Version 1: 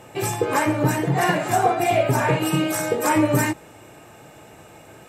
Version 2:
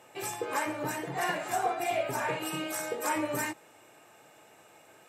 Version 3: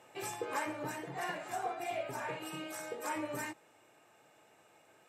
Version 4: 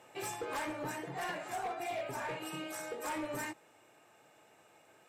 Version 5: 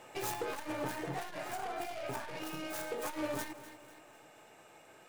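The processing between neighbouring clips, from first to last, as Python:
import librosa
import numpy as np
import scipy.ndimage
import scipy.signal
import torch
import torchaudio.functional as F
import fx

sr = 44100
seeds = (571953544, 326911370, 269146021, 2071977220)

y1 = fx.highpass(x, sr, hz=560.0, slope=6)
y1 = y1 * librosa.db_to_amplitude(-8.5)
y2 = fx.high_shelf(y1, sr, hz=10000.0, db=-6.5)
y2 = fx.rider(y2, sr, range_db=10, speed_s=2.0)
y2 = y2 * librosa.db_to_amplitude(-7.5)
y3 = np.clip(10.0 ** (34.5 / 20.0) * y2, -1.0, 1.0) / 10.0 ** (34.5 / 20.0)
y3 = y3 * librosa.db_to_amplitude(1.0)
y4 = fx.tracing_dist(y3, sr, depth_ms=0.36)
y4 = fx.echo_feedback(y4, sr, ms=248, feedback_pct=46, wet_db=-19.5)
y4 = fx.transformer_sat(y4, sr, knee_hz=99.0)
y4 = y4 * librosa.db_to_amplitude(5.0)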